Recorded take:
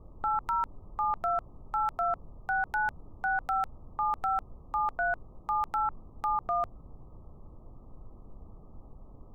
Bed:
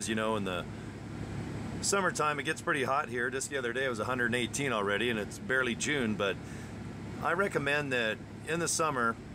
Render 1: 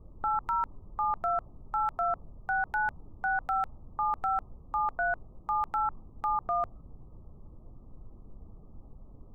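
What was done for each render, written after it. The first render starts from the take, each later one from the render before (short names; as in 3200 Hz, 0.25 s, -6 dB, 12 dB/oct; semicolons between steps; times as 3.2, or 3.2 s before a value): denoiser 6 dB, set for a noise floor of -52 dBFS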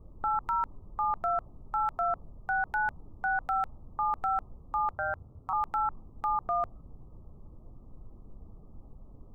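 4.91–5.53 ring modulator 84 Hz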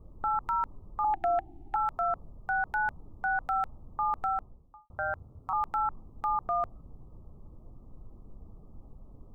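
1.04–1.76 EQ curve 100 Hz 0 dB, 190 Hz -7 dB, 340 Hz +13 dB, 520 Hz -19 dB, 780 Hz +14 dB, 1100 Hz -22 dB, 1700 Hz +11 dB, 2800 Hz +12 dB, 5100 Hz -1 dB; 4.21–4.9 studio fade out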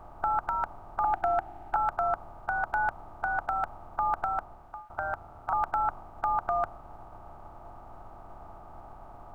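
per-bin compression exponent 0.4; upward expander 1.5:1, over -40 dBFS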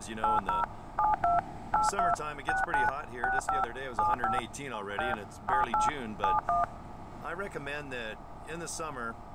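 add bed -8 dB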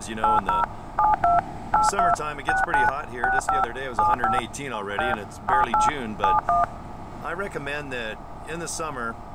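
gain +7.5 dB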